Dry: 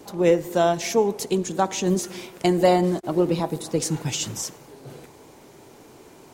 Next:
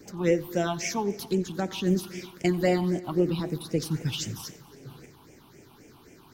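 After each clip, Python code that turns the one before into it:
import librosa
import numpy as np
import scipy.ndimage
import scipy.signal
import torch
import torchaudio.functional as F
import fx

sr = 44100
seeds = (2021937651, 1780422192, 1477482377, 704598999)

y = fx.phaser_stages(x, sr, stages=6, low_hz=490.0, high_hz=1100.0, hz=3.8, feedback_pct=25)
y = fx.echo_heads(y, sr, ms=91, heads='first and third', feedback_pct=41, wet_db=-23)
y = y * librosa.db_to_amplitude(-1.5)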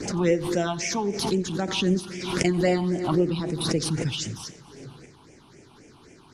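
y = scipy.signal.sosfilt(scipy.signal.cheby1(4, 1.0, 10000.0, 'lowpass', fs=sr, output='sos'), x)
y = fx.pre_swell(y, sr, db_per_s=53.0)
y = y * librosa.db_to_amplitude(2.0)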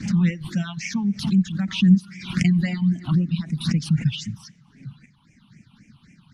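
y = fx.peak_eq(x, sr, hz=160.0, db=6.0, octaves=2.1)
y = fx.dereverb_blind(y, sr, rt60_s=1.6)
y = fx.curve_eq(y, sr, hz=(100.0, 210.0, 400.0, 1800.0, 2800.0, 9000.0), db=(0, 6, -25, 1, 1, -9))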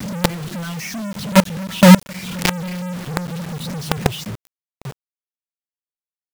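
y = fx.hpss(x, sr, part='percussive', gain_db=-7)
y = fx.quant_companded(y, sr, bits=2)
y = y * librosa.db_to_amplitude(-1.0)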